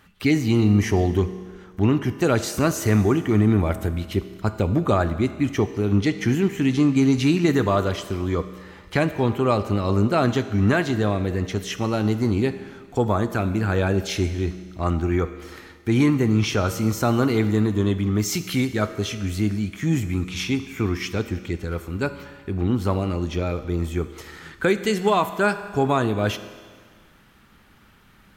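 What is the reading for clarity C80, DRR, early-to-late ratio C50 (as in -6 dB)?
13.0 dB, 10.0 dB, 11.5 dB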